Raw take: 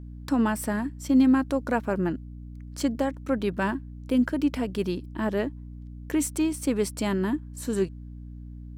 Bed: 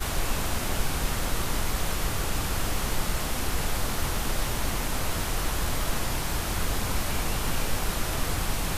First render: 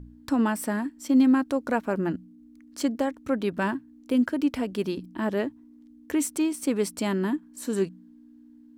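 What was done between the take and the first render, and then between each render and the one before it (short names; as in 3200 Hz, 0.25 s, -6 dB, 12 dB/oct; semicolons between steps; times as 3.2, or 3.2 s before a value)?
de-hum 60 Hz, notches 3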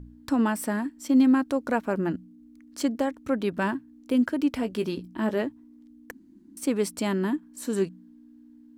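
4.61–5.42 doubler 18 ms -10 dB; 6.11–6.57 room tone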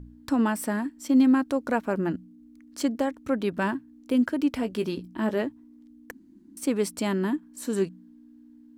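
nothing audible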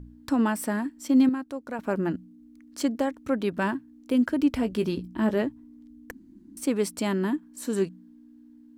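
1.29–1.79 gain -8.5 dB; 4.29–6.63 low shelf 140 Hz +10 dB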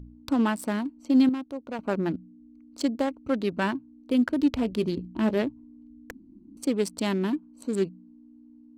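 Wiener smoothing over 25 samples; bell 4200 Hz +6 dB 1.7 oct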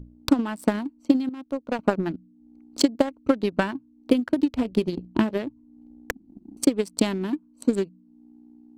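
compressor 12:1, threshold -24 dBFS, peak gain reduction 9 dB; transient shaper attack +12 dB, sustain -5 dB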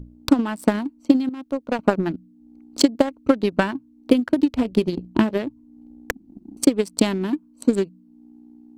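gain +3.5 dB; limiter -2 dBFS, peak gain reduction 2 dB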